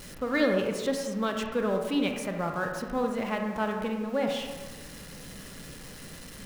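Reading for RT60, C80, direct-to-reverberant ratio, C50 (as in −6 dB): 1.3 s, 6.0 dB, 3.0 dB, 4.5 dB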